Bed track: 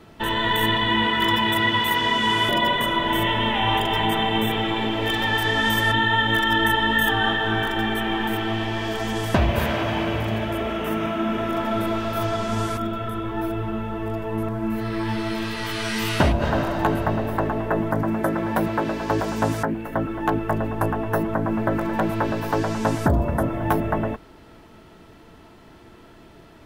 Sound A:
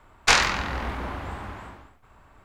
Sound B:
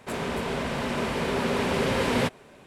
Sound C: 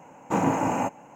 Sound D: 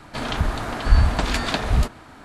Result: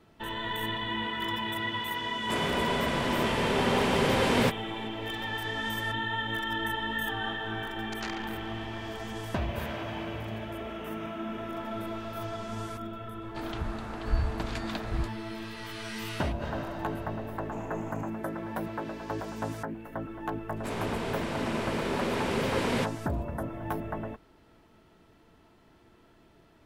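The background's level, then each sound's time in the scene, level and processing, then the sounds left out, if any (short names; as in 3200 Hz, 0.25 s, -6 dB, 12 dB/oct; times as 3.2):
bed track -12 dB
2.22 add B -0.5 dB
7.65 add A -12.5 dB + core saturation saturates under 2100 Hz
13.21 add D -12.5 dB + high shelf 5800 Hz -6 dB
17.21 add C -17 dB + limiter -17 dBFS
20.57 add B -4.5 dB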